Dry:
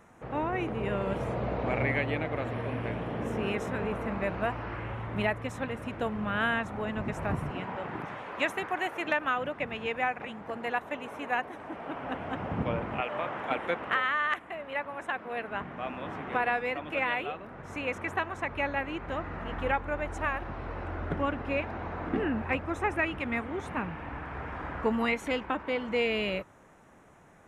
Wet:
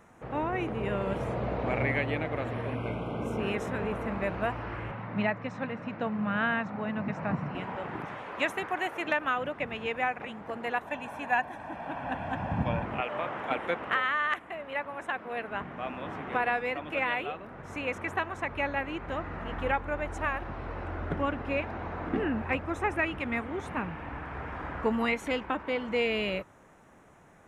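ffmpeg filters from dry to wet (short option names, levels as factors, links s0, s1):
-filter_complex "[0:a]asettb=1/sr,asplit=3[s0][s1][s2];[s0]atrim=end=2.754[s3];[s1]atrim=start=2.75:end=3.4,asetpts=PTS-STARTPTS,afade=t=in:d=0.004:c=qsin,afade=t=out:st=0.646:d=0.004:c=qsin,asuperstop=centerf=1800:order=20:qfactor=4[s4];[s2]atrim=start=3.396[s5];[s3][s4]acrossfade=d=0.004:c1=hsin:c2=qsin[s6];[s6][s5]acrossfade=d=0.004:c1=qsin:c2=hsin,asettb=1/sr,asplit=3[s7][s8][s9];[s7]atrim=end=4.914[s10];[s8]atrim=start=4.91:end=7.55,asetpts=PTS-STARTPTS,afade=t=in:d=0.004:c=qsin,afade=t=out:st=2.636:d=0.004:c=qsin,highpass=f=120:w=0.5412,highpass=f=120:w=1.3066,equalizer=f=190:t=q:w=4:g=6,equalizer=f=380:t=q:w=4:g=-7,equalizer=f=3300:t=q:w=4:g=-7,lowpass=f=5100:w=0.5412,lowpass=f=5100:w=1.3066[s11];[s9]atrim=start=7.546[s12];[s10][s11]acrossfade=d=0.004:c1=hsin:c2=qsin[s13];[s13][s12]acrossfade=d=0.004:c1=qsin:c2=hsin,asettb=1/sr,asplit=3[s14][s15][s16];[s14]atrim=end=10.874[s17];[s15]atrim=start=10.87:end=12.85,asetpts=PTS-STARTPTS,afade=t=in:d=0.004:c=qsin,afade=t=out:st=1.976:d=0.004:c=qsin,aecho=1:1:1.2:0.61,atrim=end_sample=87318[s18];[s16]atrim=start=12.846[s19];[s17][s18]acrossfade=d=0.004:c1=hsin:c2=qsin[s20];[s20][s19]acrossfade=d=0.004:c1=qsin:c2=hsin"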